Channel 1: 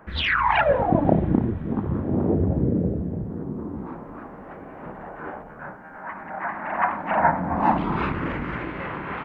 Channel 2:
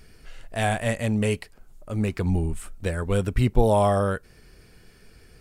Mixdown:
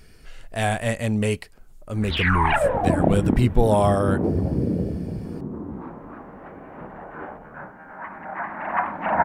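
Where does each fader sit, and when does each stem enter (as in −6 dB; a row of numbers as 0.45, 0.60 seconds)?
−1.0, +1.0 decibels; 1.95, 0.00 seconds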